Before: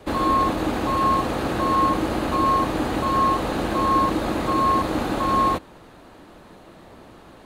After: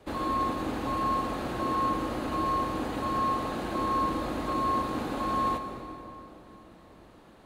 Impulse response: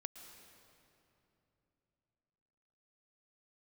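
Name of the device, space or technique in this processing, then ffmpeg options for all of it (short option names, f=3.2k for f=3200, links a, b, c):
stairwell: -filter_complex "[1:a]atrim=start_sample=2205[a];[0:a][a]afir=irnorm=-1:irlink=0,volume=-5dB"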